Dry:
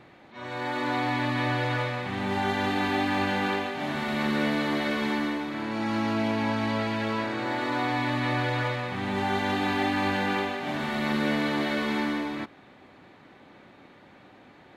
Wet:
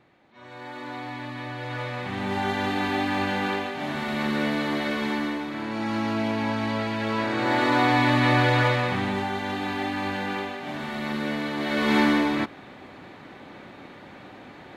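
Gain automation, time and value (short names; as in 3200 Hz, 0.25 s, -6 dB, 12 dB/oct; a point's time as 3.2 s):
1.55 s -8 dB
2.03 s +0.5 dB
6.97 s +0.5 dB
7.57 s +7 dB
8.91 s +7 dB
9.32 s -2.5 dB
11.56 s -2.5 dB
11.96 s +8 dB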